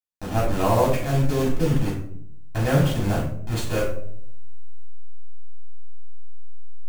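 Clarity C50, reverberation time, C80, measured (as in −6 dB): 4.5 dB, 0.65 s, 9.0 dB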